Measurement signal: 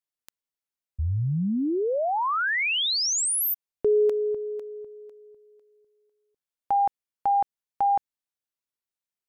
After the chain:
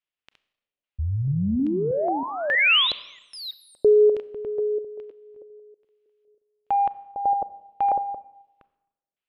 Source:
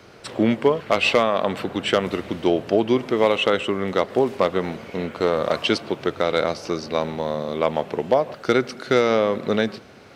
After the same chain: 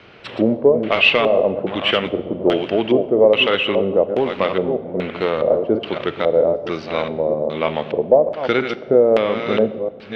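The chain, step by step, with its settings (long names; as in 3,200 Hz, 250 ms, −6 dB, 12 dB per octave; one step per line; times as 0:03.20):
delay that plays each chunk backwards 319 ms, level −7.5 dB
in parallel at −6 dB: soft clipping −13 dBFS
on the sum: auto-filter low-pass square 1.2 Hz 570–2,900 Hz
four-comb reverb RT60 0.96 s, combs from 29 ms, DRR 16 dB
level −3 dB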